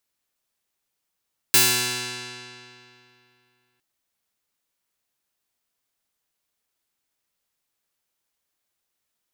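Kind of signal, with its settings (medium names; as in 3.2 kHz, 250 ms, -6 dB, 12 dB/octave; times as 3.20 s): plucked string B2, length 2.26 s, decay 2.70 s, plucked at 0.2, bright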